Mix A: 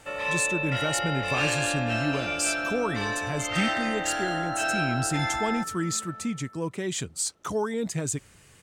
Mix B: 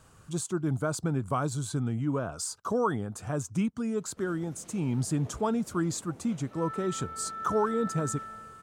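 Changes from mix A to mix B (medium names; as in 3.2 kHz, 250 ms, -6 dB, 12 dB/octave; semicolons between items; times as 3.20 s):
speech: add resonant high shelf 1.6 kHz -6.5 dB, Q 3; first sound: muted; second sound: entry +2.15 s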